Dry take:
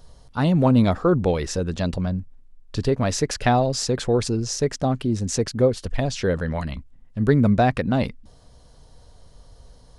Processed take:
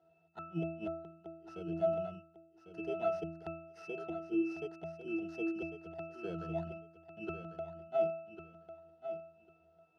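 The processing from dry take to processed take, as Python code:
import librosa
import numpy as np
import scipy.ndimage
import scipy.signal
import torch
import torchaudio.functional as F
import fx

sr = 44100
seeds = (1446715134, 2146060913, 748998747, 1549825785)

p1 = fx.bit_reversed(x, sr, seeds[0], block=16)
p2 = scipy.signal.sosfilt(scipy.signal.cheby1(2, 1.0, [520.0, 6000.0], 'bandpass', fs=sr, output='sos'), p1)
p3 = fx.gate_flip(p2, sr, shuts_db=-13.0, range_db=-42)
p4 = fx.octave_resonator(p3, sr, note='E', decay_s=0.64)
p5 = p4 + fx.echo_feedback(p4, sr, ms=1099, feedback_pct=16, wet_db=-10.0, dry=0)
y = p5 * 10.0 ** (15.0 / 20.0)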